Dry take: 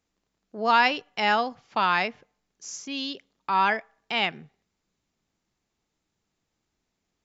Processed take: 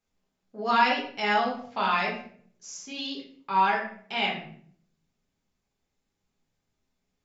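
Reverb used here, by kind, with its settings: simulated room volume 77 m³, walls mixed, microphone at 1.3 m; trim -8 dB

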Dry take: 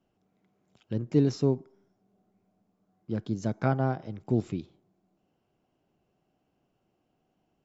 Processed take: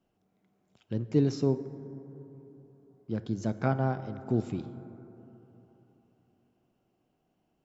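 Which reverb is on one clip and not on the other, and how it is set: plate-style reverb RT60 3.6 s, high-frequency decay 0.3×, DRR 11.5 dB; trim -1.5 dB

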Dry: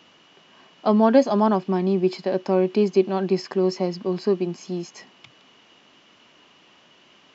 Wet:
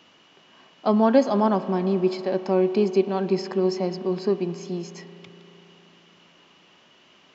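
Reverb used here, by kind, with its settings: spring tank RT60 3.7 s, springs 35 ms, chirp 25 ms, DRR 11.5 dB; trim -1.5 dB

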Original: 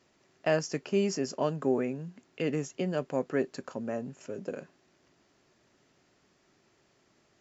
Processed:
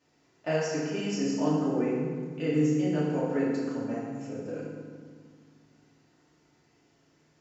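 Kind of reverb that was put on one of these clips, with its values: FDN reverb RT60 1.7 s, low-frequency decay 1.55×, high-frequency decay 0.7×, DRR -8 dB; trim -8 dB

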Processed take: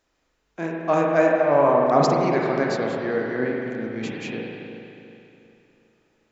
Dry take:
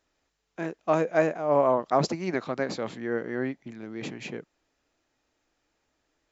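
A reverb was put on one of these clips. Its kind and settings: spring tank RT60 2.9 s, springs 36/40 ms, chirp 65 ms, DRR -1.5 dB; trim +2.5 dB

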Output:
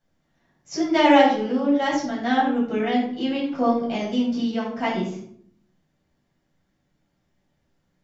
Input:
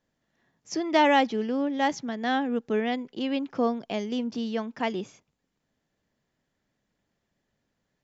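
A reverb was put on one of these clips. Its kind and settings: simulated room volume 840 m³, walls furnished, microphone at 7.5 m; trim -4.5 dB

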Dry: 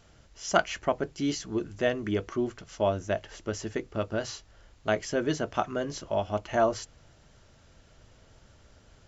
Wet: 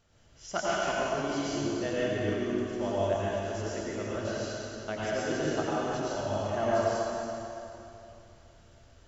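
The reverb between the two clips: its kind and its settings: plate-style reverb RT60 3 s, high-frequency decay 0.9×, pre-delay 80 ms, DRR -8.5 dB; trim -10 dB

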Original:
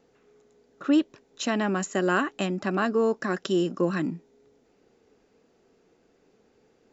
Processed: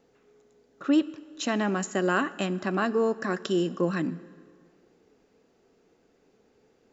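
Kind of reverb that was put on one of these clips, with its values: plate-style reverb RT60 2 s, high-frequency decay 0.8×, DRR 16.5 dB; trim -1 dB

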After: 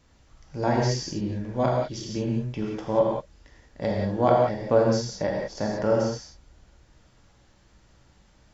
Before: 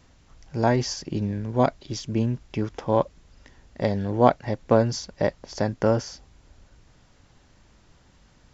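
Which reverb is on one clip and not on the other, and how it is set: gated-style reverb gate 210 ms flat, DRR -2 dB; trim -5.5 dB

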